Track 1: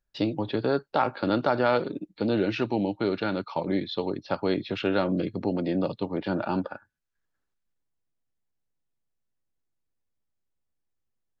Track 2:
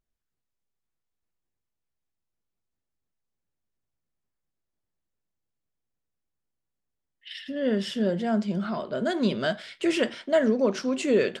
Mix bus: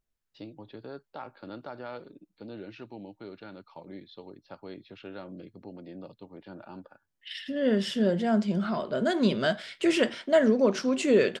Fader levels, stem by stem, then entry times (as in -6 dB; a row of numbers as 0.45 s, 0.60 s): -17.0 dB, +0.5 dB; 0.20 s, 0.00 s